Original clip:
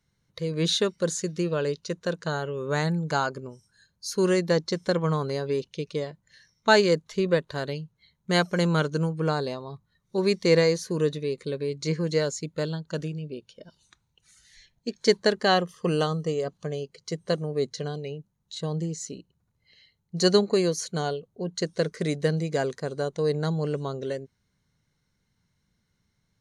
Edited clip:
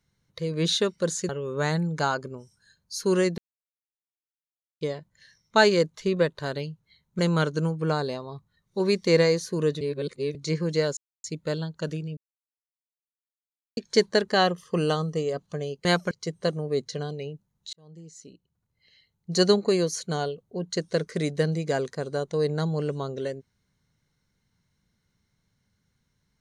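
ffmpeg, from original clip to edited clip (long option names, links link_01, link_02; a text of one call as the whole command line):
ffmpeg -i in.wav -filter_complex "[0:a]asplit=13[link_01][link_02][link_03][link_04][link_05][link_06][link_07][link_08][link_09][link_10][link_11][link_12][link_13];[link_01]atrim=end=1.292[link_14];[link_02]atrim=start=2.408:end=4.5,asetpts=PTS-STARTPTS,afade=type=out:start_time=2.088:duration=0.004:curve=hsin[link_15];[link_03]atrim=start=4.5:end=5.93,asetpts=PTS-STARTPTS,volume=0[link_16];[link_04]atrim=start=5.93:end=8.312,asetpts=PTS-STARTPTS,afade=type=in:duration=0.004:curve=hsin[link_17];[link_05]atrim=start=8.568:end=11.192[link_18];[link_06]atrim=start=11.188:end=11.732,asetpts=PTS-STARTPTS,areverse[link_19];[link_07]atrim=start=11.728:end=12.35,asetpts=PTS-STARTPTS,afade=type=out:start_time=0.618:duration=0.004:curve=hsin,apad=pad_dur=0.27[link_20];[link_08]atrim=start=12.35:end=13.28,asetpts=PTS-STARTPTS,afade=type=in:duration=0.004:curve=hsin,afade=type=out:start_time=0.926:duration=0.004:curve=hsin[link_21];[link_09]atrim=start=13.28:end=14.88,asetpts=PTS-STARTPTS,volume=0[link_22];[link_10]atrim=start=14.88:end=16.962,asetpts=PTS-STARTPTS,afade=type=in:duration=0.004:curve=hsin[link_23];[link_11]atrim=start=8.308:end=8.572[link_24];[link_12]atrim=start=16.958:end=18.58,asetpts=PTS-STARTPTS,afade=type=out:start_time=1.618:duration=0.004:curve=hsin[link_25];[link_13]atrim=start=18.58,asetpts=PTS-STARTPTS,afade=type=in:duration=1.63[link_26];[link_15][link_16][link_17]concat=n=3:v=0:a=1[link_27];[link_14][link_27]acrossfade=duration=0.004:curve1=hsin:curve2=hsin[link_28];[link_28][link_18]acrossfade=duration=0.004:curve1=hsin:curve2=hsin[link_29];[link_29][link_19]acrossfade=duration=0.004:curve1=hsin:curve2=hsin[link_30];[link_20][link_21][link_22][link_23]concat=n=4:v=0:a=1[link_31];[link_30][link_31]acrossfade=duration=0.004:curve1=hsin:curve2=hsin[link_32];[link_32][link_24]acrossfade=duration=0.004:curve1=hsin:curve2=hsin[link_33];[link_25][link_26]concat=n=2:v=0:a=1[link_34];[link_33][link_34]acrossfade=duration=0.004:curve1=hsin:curve2=hsin" out.wav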